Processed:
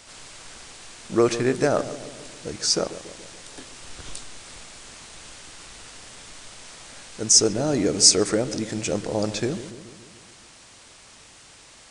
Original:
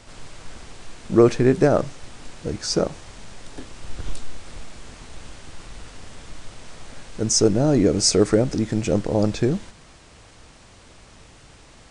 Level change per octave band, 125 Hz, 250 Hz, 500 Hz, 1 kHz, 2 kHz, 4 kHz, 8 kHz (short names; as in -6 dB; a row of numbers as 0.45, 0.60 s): -8.0, -5.5, -4.0, -1.5, +0.5, +4.5, +5.5 dB